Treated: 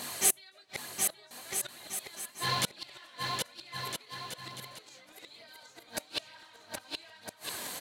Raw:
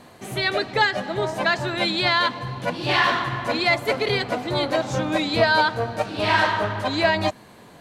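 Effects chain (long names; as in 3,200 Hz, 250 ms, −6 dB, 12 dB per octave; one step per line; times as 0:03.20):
spectral tilt +3 dB per octave
double-tracking delay 21 ms −5 dB
downward compressor 2 to 1, threshold −27 dBFS, peak gain reduction 9 dB
gate with flip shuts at −21 dBFS, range −35 dB
high-shelf EQ 3,500 Hz +8.5 dB
bouncing-ball delay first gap 770 ms, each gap 0.7×, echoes 5
phase shifter 1.1 Hz, delay 4.2 ms, feedback 33%
level +1.5 dB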